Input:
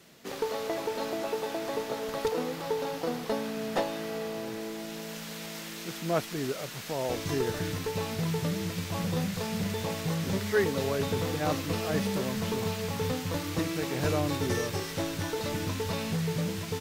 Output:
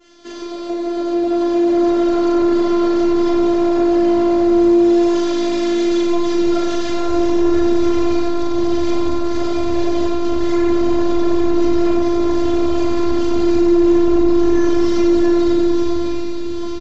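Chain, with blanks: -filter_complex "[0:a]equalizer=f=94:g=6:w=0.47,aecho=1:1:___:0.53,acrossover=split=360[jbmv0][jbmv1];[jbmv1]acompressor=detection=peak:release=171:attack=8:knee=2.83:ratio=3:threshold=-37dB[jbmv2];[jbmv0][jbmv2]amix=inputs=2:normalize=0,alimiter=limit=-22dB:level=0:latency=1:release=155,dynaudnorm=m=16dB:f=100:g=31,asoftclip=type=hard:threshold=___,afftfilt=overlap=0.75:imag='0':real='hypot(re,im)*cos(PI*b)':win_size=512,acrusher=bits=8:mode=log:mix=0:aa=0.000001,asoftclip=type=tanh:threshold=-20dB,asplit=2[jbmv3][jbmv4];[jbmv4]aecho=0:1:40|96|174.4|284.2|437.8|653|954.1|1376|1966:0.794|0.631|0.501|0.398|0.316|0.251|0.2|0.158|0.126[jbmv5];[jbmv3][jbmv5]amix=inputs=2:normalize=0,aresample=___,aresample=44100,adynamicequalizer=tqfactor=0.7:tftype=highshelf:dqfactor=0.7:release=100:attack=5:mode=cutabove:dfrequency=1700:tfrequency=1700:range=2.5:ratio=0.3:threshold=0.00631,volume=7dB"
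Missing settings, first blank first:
6.1, -20dB, 16000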